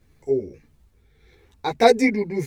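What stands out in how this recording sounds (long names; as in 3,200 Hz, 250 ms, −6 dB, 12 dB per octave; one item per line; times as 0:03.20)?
tremolo triangle 1.6 Hz, depth 45%
a shimmering, thickened sound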